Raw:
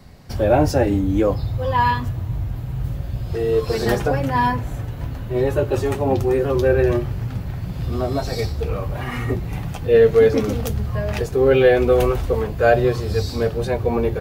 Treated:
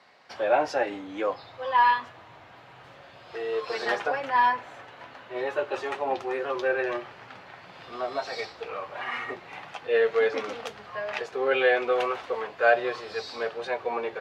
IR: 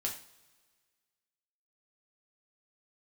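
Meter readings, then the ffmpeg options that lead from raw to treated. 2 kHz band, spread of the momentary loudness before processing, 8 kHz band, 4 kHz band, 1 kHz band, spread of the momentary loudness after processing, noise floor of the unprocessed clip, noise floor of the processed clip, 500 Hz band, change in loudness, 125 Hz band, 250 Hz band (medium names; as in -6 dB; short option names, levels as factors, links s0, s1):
-0.5 dB, 12 LU, under -10 dB, -4.0 dB, -2.0 dB, 19 LU, -30 dBFS, -50 dBFS, -9.5 dB, -7.5 dB, -33.5 dB, -17.0 dB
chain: -af "highpass=800,lowpass=3400"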